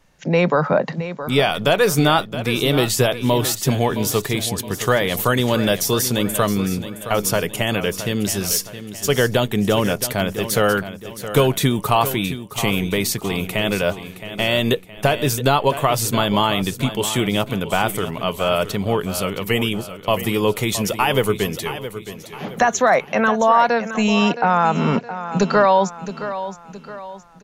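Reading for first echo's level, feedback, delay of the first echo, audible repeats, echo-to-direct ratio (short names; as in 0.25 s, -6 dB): -12.0 dB, 42%, 0.668 s, 4, -11.0 dB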